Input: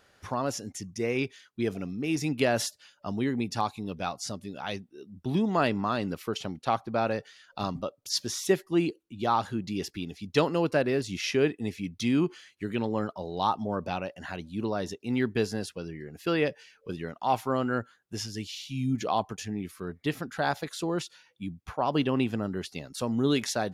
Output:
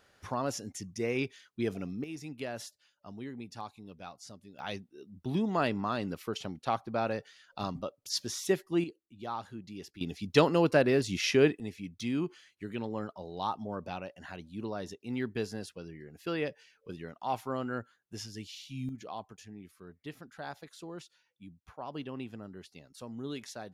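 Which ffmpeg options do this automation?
-af "asetnsamples=n=441:p=0,asendcmd='2.04 volume volume -13.5dB;4.59 volume volume -4dB;8.84 volume volume -12dB;10.01 volume volume 1dB;11.6 volume volume -7dB;18.89 volume volume -14dB',volume=0.708"

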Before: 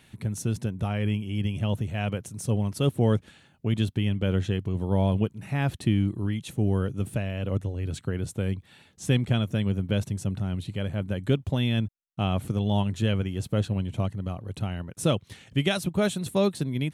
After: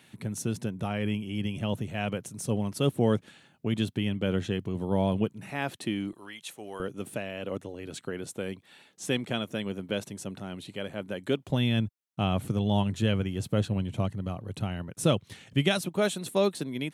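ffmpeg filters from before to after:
-af "asetnsamples=n=441:p=0,asendcmd='5.5 highpass f 310;6.13 highpass f 750;6.8 highpass f 280;11.5 highpass f 96;15.81 highpass f 250',highpass=150"

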